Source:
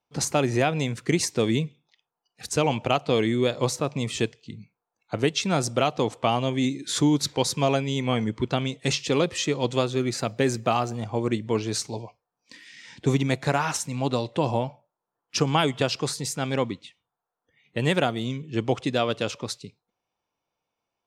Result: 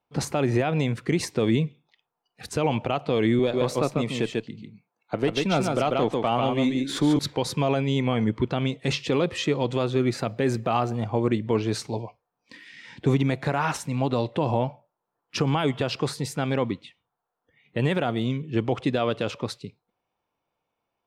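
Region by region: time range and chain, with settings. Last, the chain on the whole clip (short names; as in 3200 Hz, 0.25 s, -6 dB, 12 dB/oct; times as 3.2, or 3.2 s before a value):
3.39–7.19 HPF 150 Hz + echo 0.143 s -4.5 dB + tube stage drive 12 dB, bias 0.35
whole clip: bell 6600 Hz -7 dB 0.97 oct; limiter -15.5 dBFS; high shelf 3900 Hz -6.5 dB; gain +3.5 dB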